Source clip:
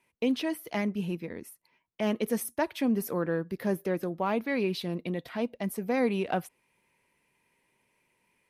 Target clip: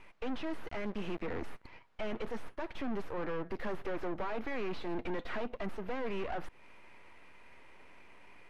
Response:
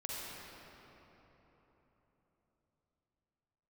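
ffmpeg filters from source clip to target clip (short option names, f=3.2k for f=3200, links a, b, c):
-filter_complex "[0:a]highpass=f=230:w=0.5412,highpass=f=230:w=1.3066,asplit=3[a][b][c];[a]afade=t=out:st=0.67:d=0.02[d];[b]aeval=exprs='sgn(val(0))*max(abs(val(0))-0.00251,0)':c=same,afade=t=in:st=0.67:d=0.02,afade=t=out:st=1.21:d=0.02[e];[c]afade=t=in:st=1.21:d=0.02[f];[d][e][f]amix=inputs=3:normalize=0,crystalizer=i=6.5:c=0,aeval=exprs='max(val(0),0)':c=same,acompressor=threshold=-35dB:ratio=16,aeval=exprs='(tanh(141*val(0)+0.25)-tanh(0.25))/141':c=same,lowpass=1.8k,volume=17dB"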